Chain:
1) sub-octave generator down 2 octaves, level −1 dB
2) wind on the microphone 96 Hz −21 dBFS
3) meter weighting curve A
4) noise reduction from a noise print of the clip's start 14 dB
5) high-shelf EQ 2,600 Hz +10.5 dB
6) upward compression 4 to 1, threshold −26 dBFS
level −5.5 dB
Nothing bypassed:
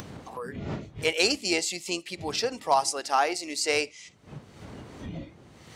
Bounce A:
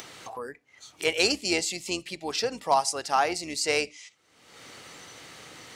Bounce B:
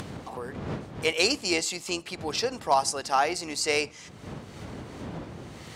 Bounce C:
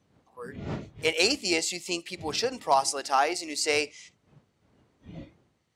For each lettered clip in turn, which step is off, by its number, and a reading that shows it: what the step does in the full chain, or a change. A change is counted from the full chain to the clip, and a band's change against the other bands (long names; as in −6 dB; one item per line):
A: 2, 125 Hz band −7.5 dB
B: 4, change in momentary loudness spread −3 LU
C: 6, change in momentary loudness spread −2 LU